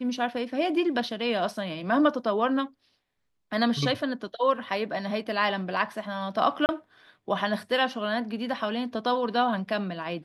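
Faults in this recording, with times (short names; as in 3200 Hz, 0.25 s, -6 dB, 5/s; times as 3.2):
6.66–6.69 gap 29 ms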